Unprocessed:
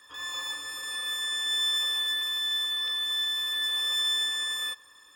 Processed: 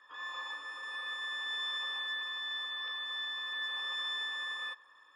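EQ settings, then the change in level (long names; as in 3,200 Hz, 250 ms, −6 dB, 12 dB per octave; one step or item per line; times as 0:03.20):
resonant band-pass 1,100 Hz, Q 0.98
high-frequency loss of the air 57 metres
0.0 dB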